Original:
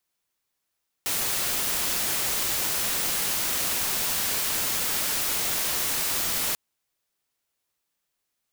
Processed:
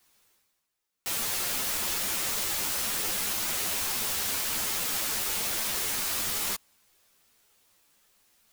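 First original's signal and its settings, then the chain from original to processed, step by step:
noise white, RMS -26.5 dBFS 5.49 s
reverse; upward compressor, threshold -46 dBFS; reverse; ensemble effect

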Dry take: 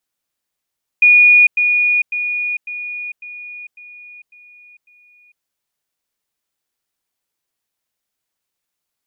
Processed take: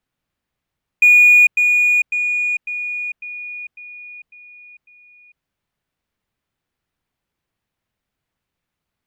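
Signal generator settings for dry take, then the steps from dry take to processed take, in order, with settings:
level ladder 2450 Hz -5.5 dBFS, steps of -6 dB, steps 8, 0.45 s 0.10 s
tone controls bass +11 dB, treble -13 dB; in parallel at -4.5 dB: soft clip -22 dBFS

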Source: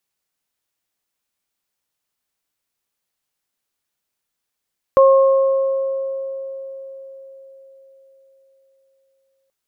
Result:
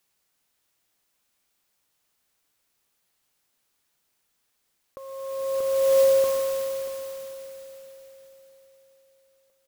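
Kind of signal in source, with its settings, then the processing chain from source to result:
additive tone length 4.53 s, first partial 539 Hz, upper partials -7 dB, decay 4.60 s, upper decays 2.09 s, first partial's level -7 dB
modulation noise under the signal 17 dB; feedback echo 0.635 s, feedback 27%, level -12 dB; negative-ratio compressor -22 dBFS, ratio -0.5

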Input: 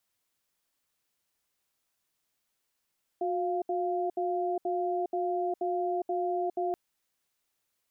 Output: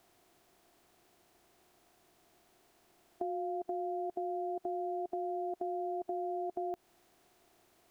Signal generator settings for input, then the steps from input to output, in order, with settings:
cadence 362 Hz, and 698 Hz, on 0.41 s, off 0.07 s, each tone -30 dBFS 3.53 s
per-bin compression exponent 0.6; compressor, threshold -34 dBFS

